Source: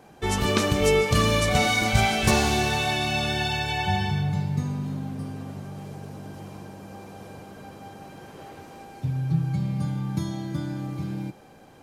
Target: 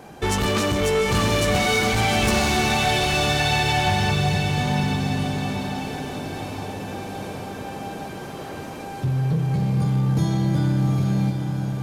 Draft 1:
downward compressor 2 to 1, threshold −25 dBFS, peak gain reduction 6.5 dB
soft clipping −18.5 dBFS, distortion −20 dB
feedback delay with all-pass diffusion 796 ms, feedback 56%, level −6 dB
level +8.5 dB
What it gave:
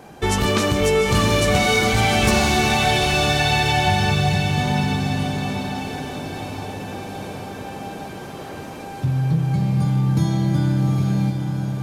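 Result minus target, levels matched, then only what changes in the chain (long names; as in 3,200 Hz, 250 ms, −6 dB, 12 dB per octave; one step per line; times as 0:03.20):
soft clipping: distortion −8 dB
change: soft clipping −25.5 dBFS, distortion −12 dB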